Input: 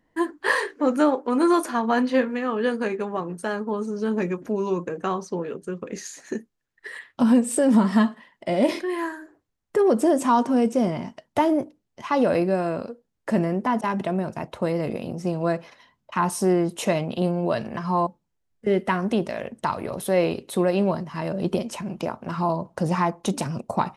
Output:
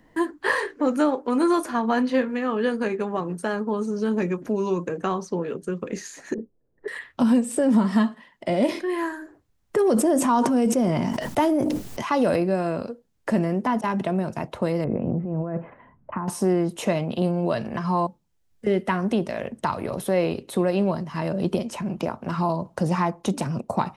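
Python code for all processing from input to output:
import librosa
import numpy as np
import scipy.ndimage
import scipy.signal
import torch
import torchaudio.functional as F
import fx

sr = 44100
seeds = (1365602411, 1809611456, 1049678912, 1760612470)

y = fx.chain(x, sr, fx.lowpass_res(hz=490.0, q=2.5),
    fx.over_compress(threshold_db=-31.0, ratio=-1.0), at=(6.34, 6.88))
y = fx.chain(y, sr, fx.high_shelf(hz=6200.0, db=8.5),
    fx.sustainer(db_per_s=25.0), at=(9.78, 12.36))
y = fx.chain(y, sr, fx.gaussian_blur(sigma=5.6),
    fx.low_shelf(hz=210.0, db=5.5),
    fx.over_compress(threshold_db=-28.0, ratio=-1.0), at=(14.84, 16.28))
y = fx.low_shelf(y, sr, hz=200.0, db=3.5)
y = fx.band_squash(y, sr, depth_pct=40)
y = F.gain(torch.from_numpy(y), -1.5).numpy()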